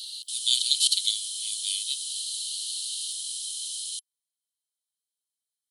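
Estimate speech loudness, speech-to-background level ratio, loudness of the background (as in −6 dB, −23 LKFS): −27.0 LKFS, 4.5 dB, −31.5 LKFS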